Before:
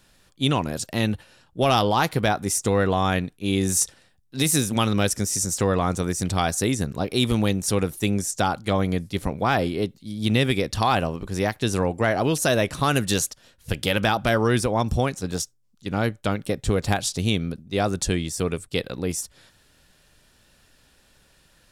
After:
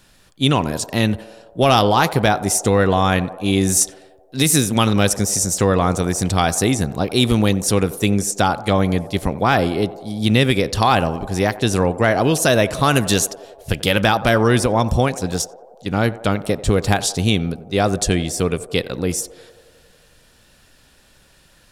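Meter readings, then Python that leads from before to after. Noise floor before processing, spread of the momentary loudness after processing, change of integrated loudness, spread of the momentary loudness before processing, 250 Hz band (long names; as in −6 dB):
−60 dBFS, 7 LU, +5.5 dB, 7 LU, +5.5 dB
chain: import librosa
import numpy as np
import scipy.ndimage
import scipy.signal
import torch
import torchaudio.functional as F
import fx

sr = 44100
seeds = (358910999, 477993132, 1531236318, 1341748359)

y = fx.echo_banded(x, sr, ms=90, feedback_pct=80, hz=620.0, wet_db=-15.0)
y = F.gain(torch.from_numpy(y), 5.5).numpy()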